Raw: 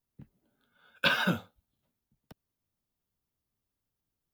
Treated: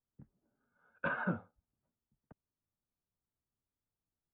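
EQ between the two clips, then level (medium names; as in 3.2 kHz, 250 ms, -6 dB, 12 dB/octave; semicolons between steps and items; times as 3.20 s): low-pass 1.6 kHz 24 dB/octave; -6.0 dB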